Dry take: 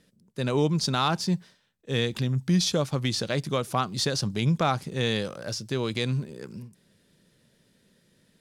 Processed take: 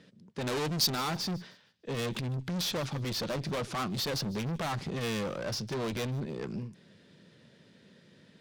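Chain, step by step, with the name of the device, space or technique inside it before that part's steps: valve radio (band-pass 97–4400 Hz; valve stage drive 37 dB, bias 0.3; transformer saturation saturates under 110 Hz); 0.47–0.90 s: treble shelf 3.2 kHz +11 dB; feedback echo behind a high-pass 152 ms, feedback 31%, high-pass 2.7 kHz, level -20 dB; trim +7 dB

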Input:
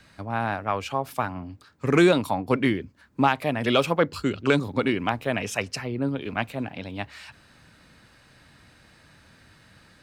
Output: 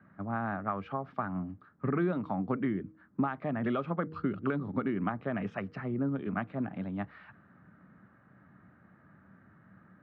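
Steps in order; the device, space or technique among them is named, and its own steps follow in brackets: high-pass 94 Hz; de-hum 158.2 Hz, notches 3; bass amplifier (compression 5:1, threshold -24 dBFS, peak gain reduction 10 dB; cabinet simulation 72–2300 Hz, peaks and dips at 190 Hz +8 dB, 490 Hz -6 dB, 1.2 kHz +8 dB); level-controlled noise filter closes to 1.6 kHz, open at -28 dBFS; fifteen-band graphic EQ 1 kHz -7 dB, 2.5 kHz -11 dB, 10 kHz +4 dB; trim -2.5 dB

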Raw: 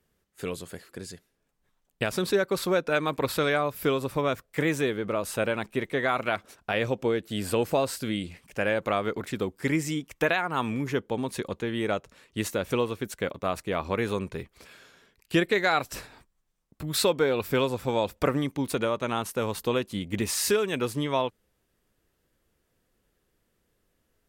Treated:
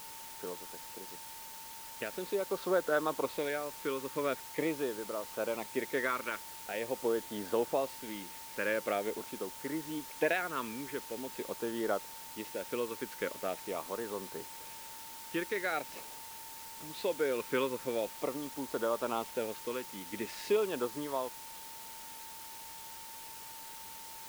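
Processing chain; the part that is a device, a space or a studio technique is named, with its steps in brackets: shortwave radio (band-pass 300–2500 Hz; tremolo 0.68 Hz, depth 50%; LFO notch sine 0.44 Hz 700–2500 Hz; whistle 900 Hz -48 dBFS; white noise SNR 11 dB); trim -3 dB

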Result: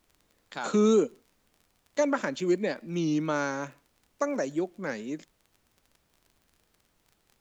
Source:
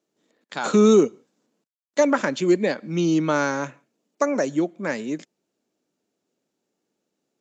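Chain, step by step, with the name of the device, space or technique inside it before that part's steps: warped LP (warped record 33 1/3 rpm, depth 100 cents; crackle 33 per s -38 dBFS; pink noise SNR 40 dB); trim -7 dB

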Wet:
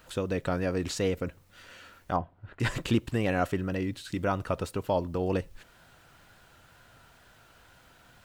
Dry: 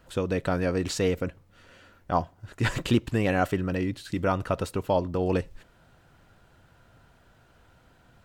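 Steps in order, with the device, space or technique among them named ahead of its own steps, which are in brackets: noise-reduction cassette on a plain deck (tape noise reduction on one side only encoder only; wow and flutter; white noise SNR 40 dB); 2.16–2.60 s: distance through air 480 m; trim -3 dB

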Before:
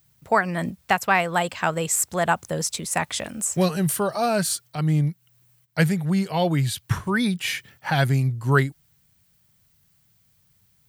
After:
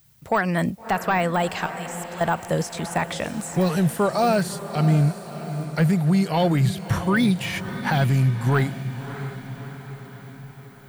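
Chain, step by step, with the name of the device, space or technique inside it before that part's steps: de-esser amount 80%; soft clipper into limiter (saturation -12.5 dBFS, distortion -21 dB; peak limiter -17.5 dBFS, peak gain reduction 4.5 dB); 1.66–2.21 s: amplifier tone stack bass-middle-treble 5-5-5; echo that smears into a reverb 627 ms, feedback 57%, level -11.5 dB; trim +4.5 dB

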